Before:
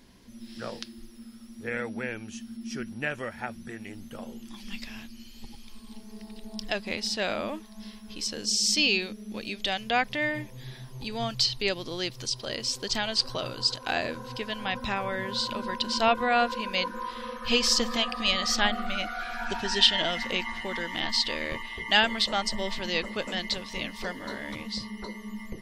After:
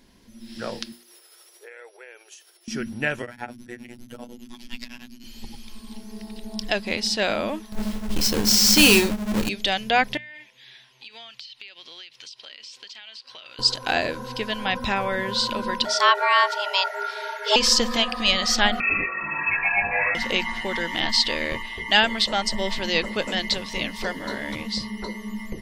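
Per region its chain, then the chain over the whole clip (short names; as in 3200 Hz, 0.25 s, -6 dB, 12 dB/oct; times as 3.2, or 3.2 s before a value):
0.92–2.68 high shelf 9100 Hz +8 dB + compressor 12:1, threshold -44 dBFS + brick-wall FIR high-pass 350 Hz
3.22–5.24 robotiser 121 Hz + beating tremolo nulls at 9.9 Hz
7.72–9.49 half-waves squared off + low shelf 130 Hz +11 dB + doubler 24 ms -10.5 dB
10.17–13.59 band-pass 2700 Hz, Q 1.8 + compressor 16:1, threshold -43 dBFS
15.85–17.56 LPF 12000 Hz + frequency shift +400 Hz
18.8–20.15 air absorption 270 m + doubler 20 ms -3 dB + inverted band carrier 2600 Hz
whole clip: notch 1200 Hz, Q 16; AGC gain up to 6 dB; notches 60/120/180/240 Hz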